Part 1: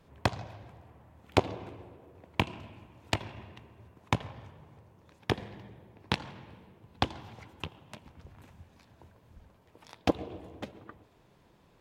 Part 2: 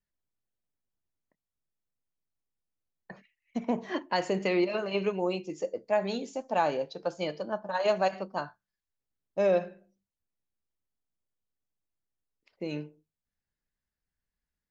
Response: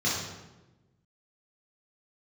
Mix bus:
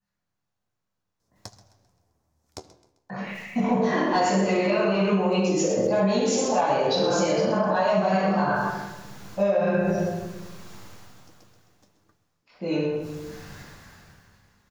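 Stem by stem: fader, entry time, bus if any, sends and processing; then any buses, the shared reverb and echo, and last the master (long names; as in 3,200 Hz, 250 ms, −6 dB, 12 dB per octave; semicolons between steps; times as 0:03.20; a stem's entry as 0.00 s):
−12.5 dB, 1.20 s, no send, echo send −18 dB, high shelf with overshoot 4,000 Hz +12.5 dB, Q 3; flanger 0.18 Hz, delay 8.7 ms, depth 9 ms, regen +52%; automatic ducking −18 dB, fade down 0.35 s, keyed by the second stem
−2.0 dB, 0.00 s, send −5.5 dB, echo send −6 dB, parametric band 1,100 Hz +8 dB 2.7 octaves; soft clipping −12 dBFS, distortion −19 dB; level that may fall only so fast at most 21 dB per second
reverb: on, RT60 1.1 s, pre-delay 3 ms
echo: repeating echo 131 ms, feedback 43%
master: downward compressor 12 to 1, threshold −18 dBFS, peak gain reduction 9.5 dB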